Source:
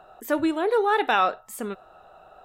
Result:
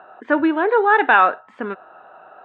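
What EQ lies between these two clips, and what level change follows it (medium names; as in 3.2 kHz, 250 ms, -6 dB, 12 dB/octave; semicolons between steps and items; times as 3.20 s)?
cabinet simulation 200–2900 Hz, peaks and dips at 280 Hz +5 dB, 980 Hz +6 dB, 1.6 kHz +9 dB; +4.0 dB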